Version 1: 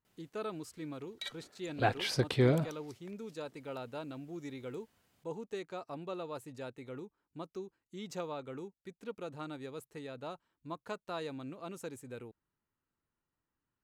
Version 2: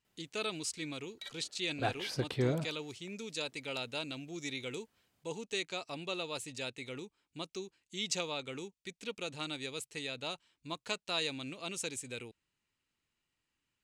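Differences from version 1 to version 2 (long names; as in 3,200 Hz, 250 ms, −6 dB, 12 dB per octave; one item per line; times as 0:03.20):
speech: add flat-topped bell 4,500 Hz +15.5 dB 2.5 octaves
background −4.5 dB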